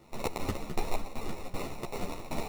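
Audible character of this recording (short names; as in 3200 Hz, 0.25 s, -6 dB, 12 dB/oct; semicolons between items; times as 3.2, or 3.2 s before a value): phasing stages 8, 3 Hz, lowest notch 180–3900 Hz; aliases and images of a low sample rate 1600 Hz, jitter 0%; tremolo saw down 2.6 Hz, depth 85%; a shimmering, thickened sound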